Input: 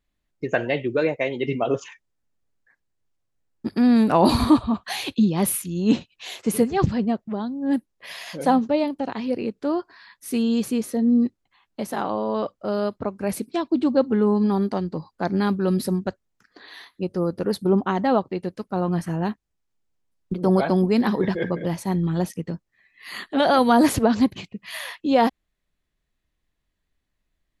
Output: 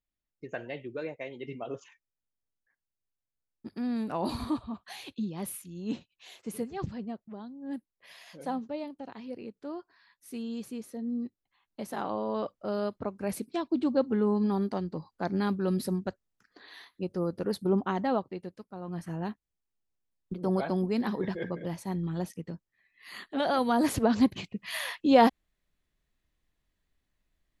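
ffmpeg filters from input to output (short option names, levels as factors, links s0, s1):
-af "volume=2.99,afade=t=in:st=11.23:d=0.91:silence=0.398107,afade=t=out:st=17.95:d=0.84:silence=0.281838,afade=t=in:st=18.79:d=0.34:silence=0.375837,afade=t=in:st=23.82:d=0.74:silence=0.398107"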